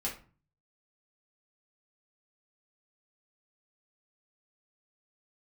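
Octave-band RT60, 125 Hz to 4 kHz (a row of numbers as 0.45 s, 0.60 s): 0.75 s, 0.55 s, 0.40 s, 0.40 s, 0.35 s, 0.25 s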